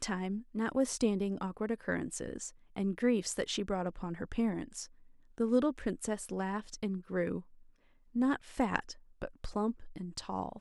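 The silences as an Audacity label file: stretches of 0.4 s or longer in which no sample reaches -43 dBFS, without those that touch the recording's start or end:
4.850000	5.380000	silence
7.410000	8.150000	silence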